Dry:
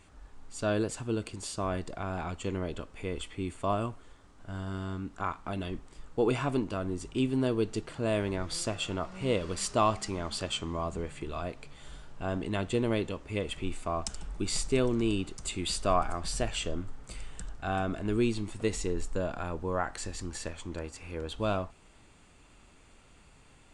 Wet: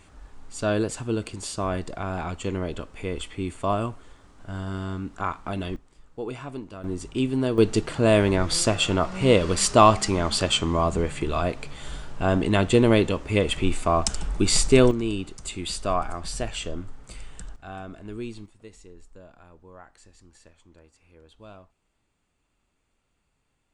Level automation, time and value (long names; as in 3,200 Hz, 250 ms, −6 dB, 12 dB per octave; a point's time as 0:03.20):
+5 dB
from 0:05.76 −6 dB
from 0:06.84 +4 dB
from 0:07.58 +11 dB
from 0:14.91 +1.5 dB
from 0:17.56 −7 dB
from 0:18.46 −16 dB